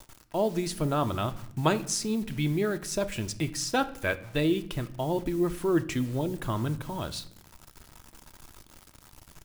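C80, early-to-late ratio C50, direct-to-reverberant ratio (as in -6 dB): 20.0 dB, 17.0 dB, 9.5 dB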